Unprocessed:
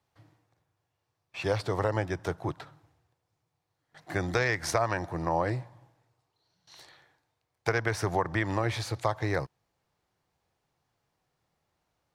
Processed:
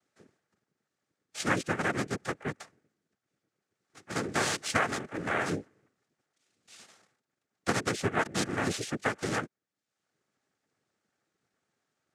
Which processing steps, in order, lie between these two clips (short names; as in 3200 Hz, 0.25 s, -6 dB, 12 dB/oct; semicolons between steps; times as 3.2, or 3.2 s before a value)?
reverb removal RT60 0.68 s; noise vocoder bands 3; notch 1000 Hz, Q 6.7